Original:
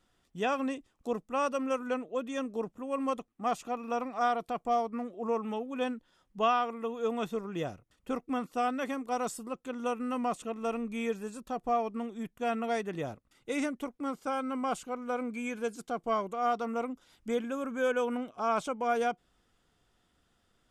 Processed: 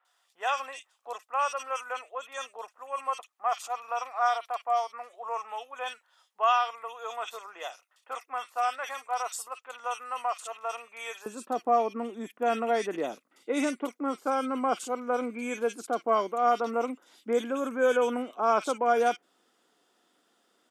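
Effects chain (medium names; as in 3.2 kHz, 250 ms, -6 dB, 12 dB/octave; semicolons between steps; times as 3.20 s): high-pass 730 Hz 24 dB/octave, from 11.26 s 260 Hz; bands offset in time lows, highs 50 ms, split 2.2 kHz; trim +5.5 dB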